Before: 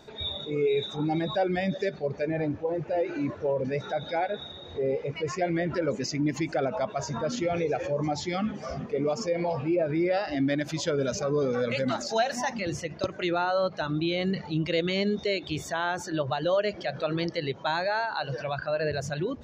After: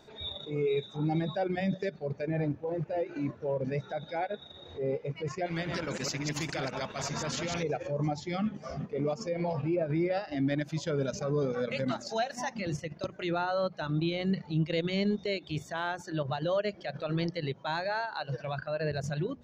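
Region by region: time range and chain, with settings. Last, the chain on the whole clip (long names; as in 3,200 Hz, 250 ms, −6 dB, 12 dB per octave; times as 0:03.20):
0:05.46–0:07.63: delay that plays each chunk backwards 104 ms, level −6 dB + every bin compressed towards the loudest bin 2 to 1
whole clip: mains-hum notches 60/120/180/240 Hz; dynamic equaliser 160 Hz, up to +7 dB, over −44 dBFS, Q 1.5; transient designer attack −4 dB, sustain −8 dB; level −4 dB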